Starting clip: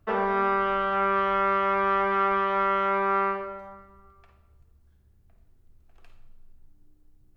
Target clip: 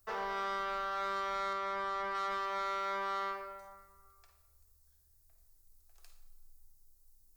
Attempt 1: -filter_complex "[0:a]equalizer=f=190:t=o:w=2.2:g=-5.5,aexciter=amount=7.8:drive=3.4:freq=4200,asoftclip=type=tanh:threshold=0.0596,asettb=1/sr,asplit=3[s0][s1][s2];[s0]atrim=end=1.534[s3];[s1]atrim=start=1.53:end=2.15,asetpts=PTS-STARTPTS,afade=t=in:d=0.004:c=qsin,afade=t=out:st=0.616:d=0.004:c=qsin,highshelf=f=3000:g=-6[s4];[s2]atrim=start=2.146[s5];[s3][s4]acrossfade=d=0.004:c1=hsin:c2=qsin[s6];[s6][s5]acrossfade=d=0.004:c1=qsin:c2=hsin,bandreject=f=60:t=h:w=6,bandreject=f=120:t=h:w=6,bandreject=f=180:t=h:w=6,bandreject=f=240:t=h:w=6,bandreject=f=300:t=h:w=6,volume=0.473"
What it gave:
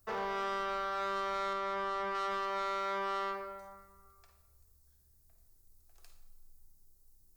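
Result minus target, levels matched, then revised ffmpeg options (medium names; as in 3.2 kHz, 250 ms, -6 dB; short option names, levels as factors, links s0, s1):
250 Hz band +3.5 dB
-filter_complex "[0:a]equalizer=f=190:t=o:w=2.2:g=-14.5,aexciter=amount=7.8:drive=3.4:freq=4200,asoftclip=type=tanh:threshold=0.0596,asettb=1/sr,asplit=3[s0][s1][s2];[s0]atrim=end=1.534[s3];[s1]atrim=start=1.53:end=2.15,asetpts=PTS-STARTPTS,afade=t=in:d=0.004:c=qsin,afade=t=out:st=0.616:d=0.004:c=qsin,highshelf=f=3000:g=-6[s4];[s2]atrim=start=2.146[s5];[s3][s4]acrossfade=d=0.004:c1=hsin:c2=qsin[s6];[s6][s5]acrossfade=d=0.004:c1=qsin:c2=hsin,bandreject=f=60:t=h:w=6,bandreject=f=120:t=h:w=6,bandreject=f=180:t=h:w=6,bandreject=f=240:t=h:w=6,bandreject=f=300:t=h:w=6,volume=0.473"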